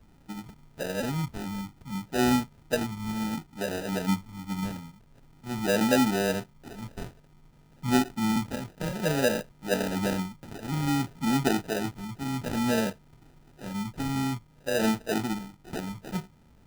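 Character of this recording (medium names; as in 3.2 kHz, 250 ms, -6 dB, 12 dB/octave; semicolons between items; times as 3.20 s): phasing stages 2, 0.55 Hz, lowest notch 480–1800 Hz; aliases and images of a low sample rate 1.1 kHz, jitter 0%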